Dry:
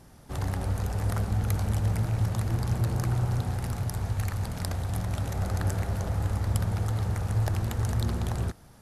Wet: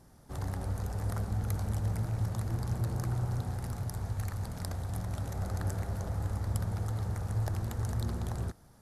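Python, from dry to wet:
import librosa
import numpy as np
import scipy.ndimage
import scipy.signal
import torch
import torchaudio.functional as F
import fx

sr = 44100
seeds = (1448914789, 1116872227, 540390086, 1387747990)

y = fx.peak_eq(x, sr, hz=2700.0, db=-6.0, octaves=0.85)
y = F.gain(torch.from_numpy(y), -5.5).numpy()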